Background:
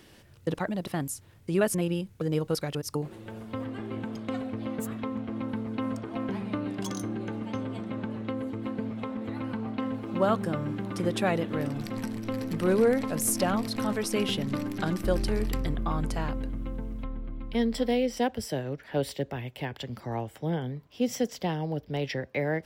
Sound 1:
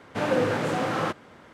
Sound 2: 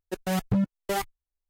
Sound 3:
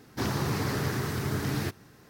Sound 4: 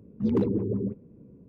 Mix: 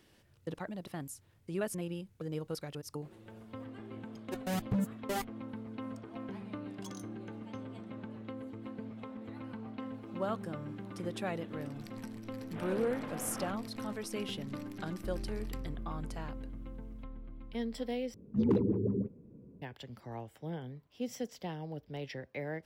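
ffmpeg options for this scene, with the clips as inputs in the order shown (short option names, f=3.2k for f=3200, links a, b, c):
-filter_complex "[0:a]volume=-10.5dB[a];[1:a]aresample=8000,aresample=44100[b];[a]asplit=2[c][d];[c]atrim=end=18.144[e];[4:a]atrim=end=1.48,asetpts=PTS-STARTPTS,volume=-3.5dB[f];[d]atrim=start=19.616[g];[2:a]atrim=end=1.49,asetpts=PTS-STARTPTS,volume=-7.5dB,afade=t=in:d=0.004:c=hsin,afade=t=out:st=1.486:d=0.004:c=hsin,adelay=4200[h];[b]atrim=end=1.53,asetpts=PTS-STARTPTS,volume=-17.5dB,afade=t=in:d=0.004:c=hsin,afade=t=out:st=1.526:d=0.004:c=hsin,adelay=12400[i];[e][f]acrossfade=d=0.004:c1=hsin:c2=hsin[j];[j][g]acrossfade=d=0.004:c1=hsin:c2=hsin[k];[k][h][i]amix=inputs=3:normalize=0"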